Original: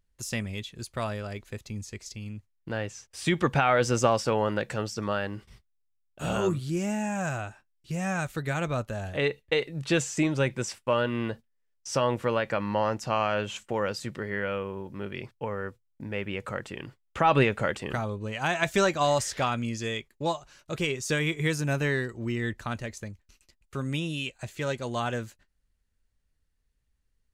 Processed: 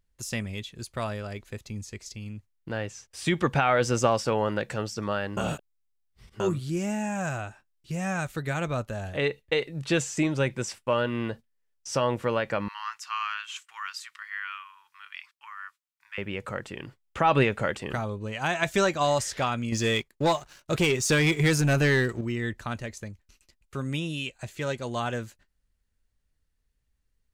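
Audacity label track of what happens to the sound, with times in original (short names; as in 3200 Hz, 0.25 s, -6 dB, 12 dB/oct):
5.370000	6.400000	reverse
12.680000	16.180000	elliptic high-pass 1100 Hz, stop band 50 dB
19.720000	22.210000	sample leveller passes 2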